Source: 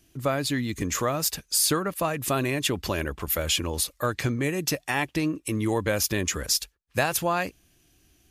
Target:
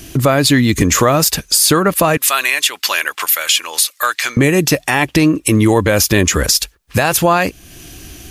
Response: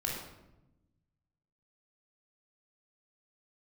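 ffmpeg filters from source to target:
-filter_complex "[0:a]asettb=1/sr,asplit=3[a][b][c];[a]atrim=end=2.174[d];[b]atrim=start=2.17:end=4.37,asetpts=PTS-STARTPTS,afade=t=in:d=0.004:c=qsin,afade=t=out:st=2.196:d=0.004:c=qsin,highpass=1.5k[e];[c]atrim=start=4.366[f];[d][e]acrossfade=d=0.004:c1=hsin:c2=qsin[g];[g][f]acrossfade=d=0.004:c1=qsin:c2=hsin,acompressor=threshold=-45dB:ratio=2,alimiter=level_in=28dB:limit=-1dB:release=50:level=0:latency=1,volume=-1dB"

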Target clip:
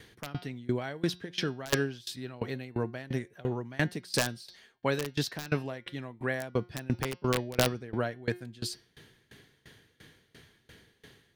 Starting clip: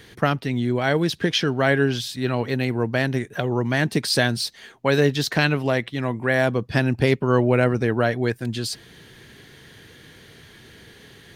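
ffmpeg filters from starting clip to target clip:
-af "aeval=exprs='(mod(2.24*val(0)+1,2)-1)/2.24':c=same,bandreject=f=178.8:t=h:w=4,bandreject=f=357.6:t=h:w=4,bandreject=f=536.4:t=h:w=4,bandreject=f=715.2:t=h:w=4,bandreject=f=894:t=h:w=4,bandreject=f=1.0728k:t=h:w=4,bandreject=f=1.2516k:t=h:w=4,bandreject=f=1.4304k:t=h:w=4,bandreject=f=1.6092k:t=h:w=4,bandreject=f=1.788k:t=h:w=4,bandreject=f=1.9668k:t=h:w=4,bandreject=f=2.1456k:t=h:w=4,bandreject=f=2.3244k:t=h:w=4,bandreject=f=2.5032k:t=h:w=4,bandreject=f=2.682k:t=h:w=4,bandreject=f=2.8608k:t=h:w=4,bandreject=f=3.0396k:t=h:w=4,bandreject=f=3.2184k:t=h:w=4,bandreject=f=3.3972k:t=h:w=4,bandreject=f=3.576k:t=h:w=4,bandreject=f=3.7548k:t=h:w=4,bandreject=f=3.9336k:t=h:w=4,bandreject=f=4.1124k:t=h:w=4,bandreject=f=4.2912k:t=h:w=4,bandreject=f=4.47k:t=h:w=4,bandreject=f=4.6488k:t=h:w=4,bandreject=f=4.8276k:t=h:w=4,bandreject=f=5.0064k:t=h:w=4,bandreject=f=5.1852k:t=h:w=4,bandreject=f=5.364k:t=h:w=4,bandreject=f=5.5428k:t=h:w=4,bandreject=f=5.7216k:t=h:w=4,bandreject=f=5.9004k:t=h:w=4,aeval=exprs='val(0)*pow(10,-23*if(lt(mod(2.9*n/s,1),2*abs(2.9)/1000),1-mod(2.9*n/s,1)/(2*abs(2.9)/1000),(mod(2.9*n/s,1)-2*abs(2.9)/1000)/(1-2*abs(2.9)/1000))/20)':c=same,volume=-4dB"

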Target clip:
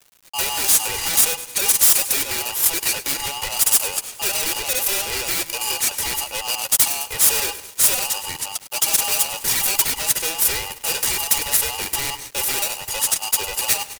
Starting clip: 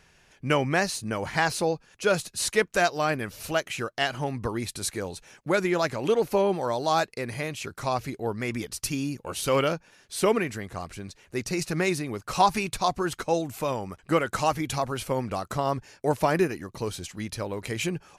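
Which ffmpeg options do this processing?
-filter_complex "[0:a]afftfilt=real='real(if(between(b,1,1012),(2*floor((b-1)/92)+1)*92-b,b),0)':imag='imag(if(between(b,1,1012),(2*floor((b-1)/92)+1)*92-b,b),0)*if(between(b,1,1012),-1,1)':win_size=2048:overlap=0.75,aeval=exprs='(tanh(28.2*val(0)+0.25)-tanh(0.25))/28.2':c=same,equalizer=f=980:t=o:w=0.5:g=10.5,atempo=1.3,highshelf=f=6.3k:g=9.5,asplit=2[a][b];[b]aecho=0:1:103|206|309|412|515:0.168|0.0907|0.049|0.0264|0.0143[c];[a][c]amix=inputs=2:normalize=0,aeval=exprs='0.0447*(abs(mod(val(0)/0.0447+3,4)-2)-1)':c=same,acrossover=split=1700[d][e];[e]crystalizer=i=6.5:c=0[f];[d][f]amix=inputs=2:normalize=0,bandreject=f=5.4k:w=5.8,aecho=1:1:2.1:0.56,aeval=exprs='val(0)*gte(abs(val(0)),0.0133)':c=same,aeval=exprs='val(0)*sgn(sin(2*PI*1000*n/s))':c=same"

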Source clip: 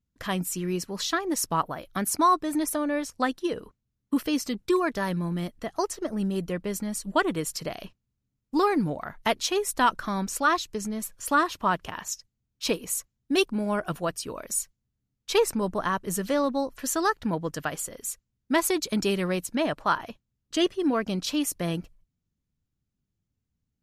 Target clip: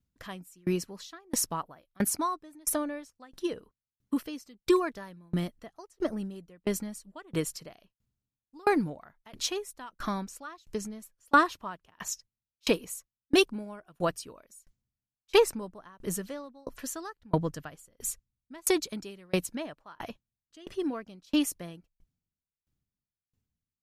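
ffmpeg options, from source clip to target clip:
-filter_complex "[0:a]asettb=1/sr,asplit=3[a][b][c];[a]atrim=end=17.194[d];[b]atrim=start=17.19:end=18.62,asetpts=PTS-STARTPTS,afade=t=in:d=0.004:c=qsin,afade=t=out:st=1.426:d=0.004:c=qsin,lowshelf=f=150:g=10[e];[c]atrim=start=18.616[f];[d][e]acrossfade=d=0.004:c1=hsin:c2=qsin[g];[g][f]acrossfade=d=0.004:c1=qsin:c2=hsin,aeval=exprs='val(0)*pow(10,-34*if(lt(mod(1.5*n/s,1),2*abs(1.5)/1000),1-mod(1.5*n/s,1)/(2*abs(1.5)/1000),(mod(1.5*n/s,1)-2*abs(1.5)/1000)/(1-2*abs(1.5)/1000))/20)':c=same,volume=3.5dB"

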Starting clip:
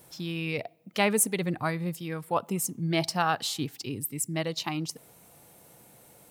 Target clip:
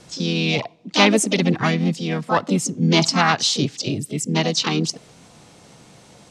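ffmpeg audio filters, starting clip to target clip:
-filter_complex "[0:a]asplit=3[a][b][c];[b]asetrate=55563,aresample=44100,atempo=0.793701,volume=-8dB[d];[c]asetrate=66075,aresample=44100,atempo=0.66742,volume=-6dB[e];[a][d][e]amix=inputs=3:normalize=0,lowpass=f=6.4k:w=0.5412,lowpass=f=6.4k:w=1.3066,acrossover=split=340|790|4600[f][g][h][i];[f]acontrast=46[j];[j][g][h][i]amix=inputs=4:normalize=0,highshelf=f=2.6k:g=10,volume=5dB"

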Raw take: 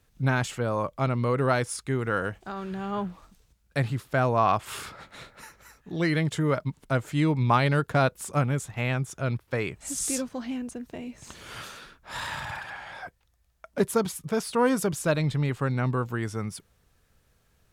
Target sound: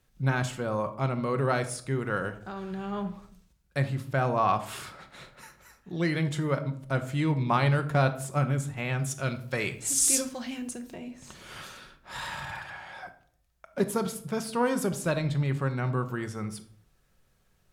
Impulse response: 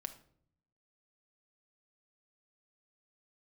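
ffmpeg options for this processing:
-filter_complex "[0:a]asettb=1/sr,asplit=3[a][b][c];[a]atrim=end=8.994[d];[b]atrim=start=8.99:end=10.94,asetpts=PTS-STARTPTS,afade=t=in:d=0.004:c=qsin,afade=t=out:st=1.946:d=0.004:c=qsin,highshelf=f=2.3k:g=10.5[e];[c]atrim=start=10.936[f];[d][e]acrossfade=d=0.004:c1=hsin:c2=qsin[g];[g][f]acrossfade=d=0.004:c1=qsin:c2=hsin[h];[1:a]atrim=start_sample=2205,afade=t=out:st=0.42:d=0.01,atrim=end_sample=18963[i];[h][i]afir=irnorm=-1:irlink=0"

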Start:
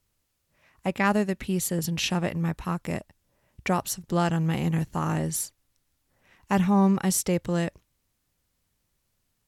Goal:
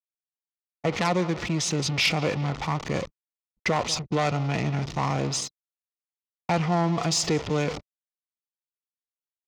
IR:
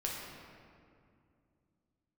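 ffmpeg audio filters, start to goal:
-filter_complex "[0:a]aeval=exprs='val(0)+0.5*0.0335*sgn(val(0))':c=same,lowpass=f=7.2k:w=0.5412,lowpass=f=7.2k:w=1.3066,aecho=1:1:180|360|540|720:0.1|0.047|0.0221|0.0104,agate=range=-22dB:threshold=-32dB:ratio=16:detection=peak,aeval=exprs='val(0)*gte(abs(val(0)),0.00355)':c=same,anlmdn=0.251,acrossover=split=400|3000[a][b][c];[a]acompressor=threshold=-30dB:ratio=3[d];[d][b][c]amix=inputs=3:normalize=0,aeval=exprs='0.376*(cos(1*acos(clip(val(0)/0.376,-1,1)))-cos(1*PI/2))+0.133*(cos(5*acos(clip(val(0)/0.376,-1,1)))-cos(5*PI/2))+0.0266*(cos(6*acos(clip(val(0)/0.376,-1,1)))-cos(6*PI/2))+0.0266*(cos(8*acos(clip(val(0)/0.376,-1,1)))-cos(8*PI/2))':c=same,asetrate=38170,aresample=44100,atempo=1.15535,highpass=f=130:p=1,bandreject=f=1.6k:w=5.2,volume=-4dB"

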